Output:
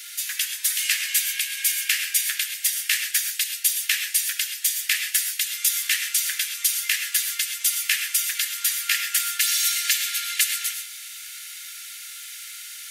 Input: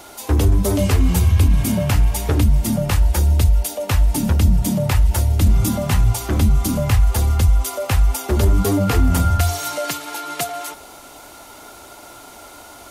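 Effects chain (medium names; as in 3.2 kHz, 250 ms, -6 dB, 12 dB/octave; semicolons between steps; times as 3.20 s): Chebyshev high-pass 1.7 kHz, order 5; gated-style reverb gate 150 ms rising, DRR 5.5 dB; trim +6.5 dB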